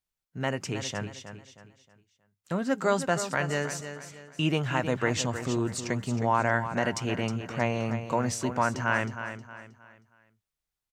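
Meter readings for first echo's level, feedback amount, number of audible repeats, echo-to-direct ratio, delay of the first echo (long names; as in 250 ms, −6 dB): −10.0 dB, 36%, 3, −9.5 dB, 315 ms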